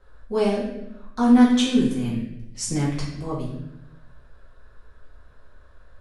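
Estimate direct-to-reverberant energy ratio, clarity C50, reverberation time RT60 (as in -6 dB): -7.0 dB, 2.5 dB, 0.85 s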